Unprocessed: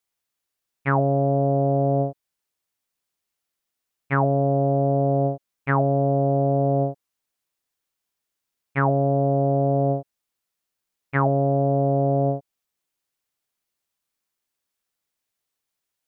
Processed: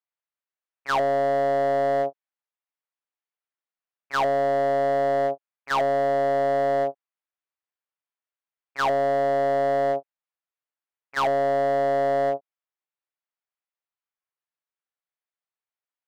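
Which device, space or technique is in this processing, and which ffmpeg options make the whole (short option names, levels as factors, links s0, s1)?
walkie-talkie: -af "highpass=580,lowpass=2300,asoftclip=type=hard:threshold=0.0562,agate=range=0.224:threshold=0.0282:ratio=16:detection=peak,volume=2"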